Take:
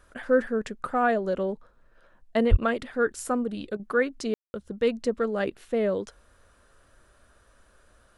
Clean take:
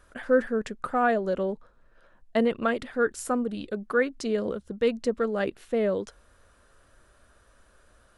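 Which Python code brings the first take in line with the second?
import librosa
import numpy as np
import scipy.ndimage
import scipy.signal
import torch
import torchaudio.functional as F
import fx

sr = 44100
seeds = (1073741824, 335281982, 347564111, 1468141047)

y = fx.highpass(x, sr, hz=140.0, slope=24, at=(2.5, 2.62), fade=0.02)
y = fx.fix_ambience(y, sr, seeds[0], print_start_s=7.04, print_end_s=7.54, start_s=4.34, end_s=4.54)
y = fx.fix_interpolate(y, sr, at_s=(3.77,), length_ms=23.0)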